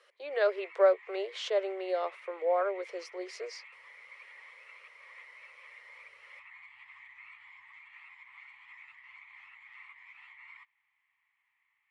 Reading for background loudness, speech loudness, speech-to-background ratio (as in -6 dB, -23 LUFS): -51.0 LUFS, -32.0 LUFS, 19.0 dB